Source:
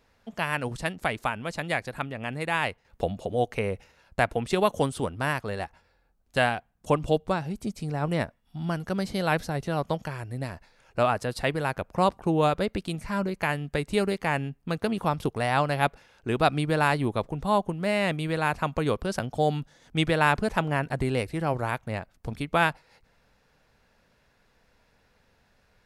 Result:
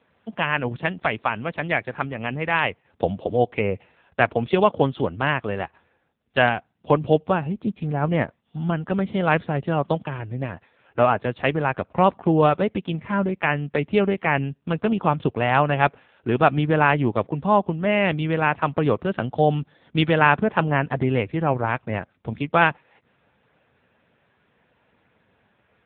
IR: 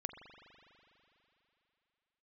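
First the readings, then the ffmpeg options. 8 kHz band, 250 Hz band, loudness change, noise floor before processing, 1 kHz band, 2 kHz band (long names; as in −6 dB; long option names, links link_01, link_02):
below −35 dB, +5.5 dB, +5.5 dB, −66 dBFS, +5.0 dB, +5.5 dB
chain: -af "volume=6dB" -ar 8000 -c:a libopencore_amrnb -b:a 6700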